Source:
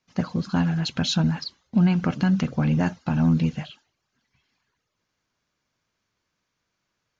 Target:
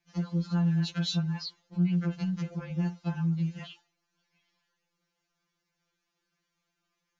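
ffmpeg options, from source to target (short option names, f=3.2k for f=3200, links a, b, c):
-af "acompressor=threshold=-26dB:ratio=12,afftfilt=real='re*2.83*eq(mod(b,8),0)':imag='im*2.83*eq(mod(b,8),0)':win_size=2048:overlap=0.75,volume=-1dB"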